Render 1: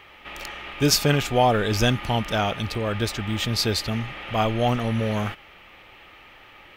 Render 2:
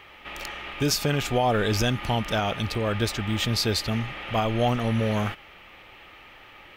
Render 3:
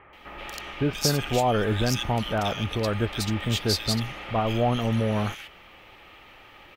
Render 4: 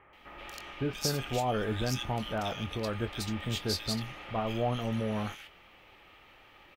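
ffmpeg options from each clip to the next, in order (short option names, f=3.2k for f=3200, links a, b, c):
-af "alimiter=limit=-13.5dB:level=0:latency=1:release=145"
-filter_complex "[0:a]acrossover=split=2000[a][b];[b]adelay=130[c];[a][c]amix=inputs=2:normalize=0"
-filter_complex "[0:a]asplit=2[a][b];[b]adelay=23,volume=-11.5dB[c];[a][c]amix=inputs=2:normalize=0,volume=-7.5dB"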